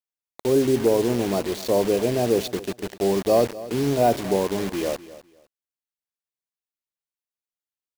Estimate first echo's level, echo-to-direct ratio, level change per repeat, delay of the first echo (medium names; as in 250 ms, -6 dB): -17.0 dB, -17.0 dB, -13.5 dB, 252 ms